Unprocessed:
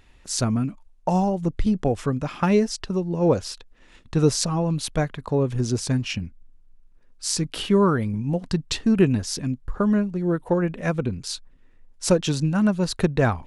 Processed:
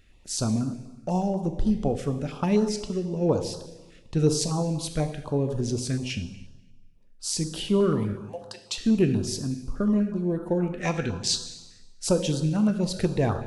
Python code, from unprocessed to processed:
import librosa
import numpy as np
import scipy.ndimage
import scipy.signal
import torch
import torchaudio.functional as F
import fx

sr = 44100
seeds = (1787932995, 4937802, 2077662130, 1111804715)

y = fx.steep_highpass(x, sr, hz=530.0, slope=36, at=(8.13, 8.78))
y = fx.spec_box(y, sr, start_s=10.8, length_s=1.03, low_hz=730.0, high_hz=8500.0, gain_db=10)
y = fx.rev_plate(y, sr, seeds[0], rt60_s=1.2, hf_ratio=0.85, predelay_ms=0, drr_db=6.5)
y = fx.filter_held_notch(y, sr, hz=8.2, low_hz=930.0, high_hz=2200.0)
y = y * librosa.db_to_amplitude(-3.5)